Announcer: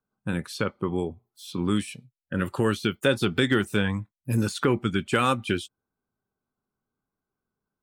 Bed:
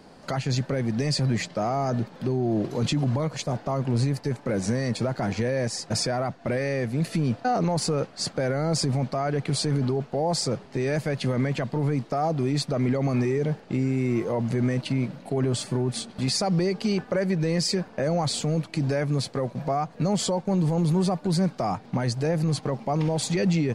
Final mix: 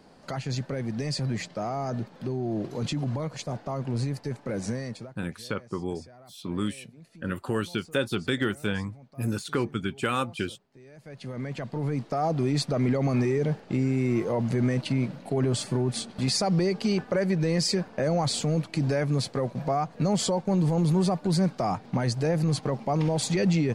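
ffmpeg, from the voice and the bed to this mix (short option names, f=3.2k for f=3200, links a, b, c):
-filter_complex "[0:a]adelay=4900,volume=-4.5dB[a];[1:a]volume=19.5dB,afade=t=out:st=4.7:d=0.45:silence=0.1,afade=t=in:st=10.96:d=1.41:silence=0.0595662[b];[a][b]amix=inputs=2:normalize=0"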